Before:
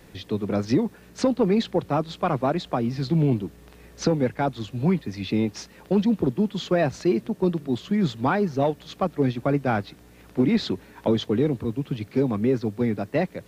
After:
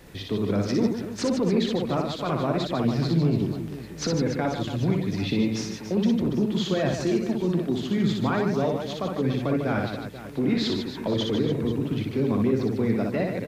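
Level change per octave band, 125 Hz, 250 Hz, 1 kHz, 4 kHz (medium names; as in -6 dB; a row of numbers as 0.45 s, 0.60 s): 0.0 dB, -0.5 dB, -3.5 dB, +3.0 dB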